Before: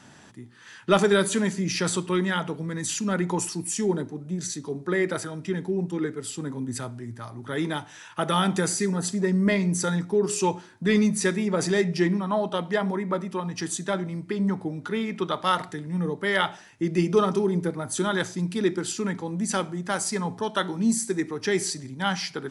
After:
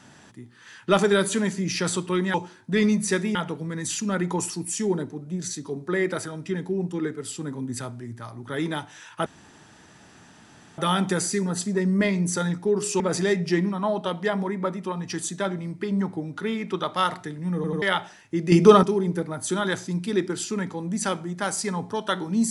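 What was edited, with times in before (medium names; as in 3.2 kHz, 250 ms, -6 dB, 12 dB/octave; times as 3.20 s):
8.25 s: insert room tone 1.52 s
10.47–11.48 s: move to 2.34 s
16.03 s: stutter in place 0.09 s, 3 plays
17.00–17.31 s: gain +8 dB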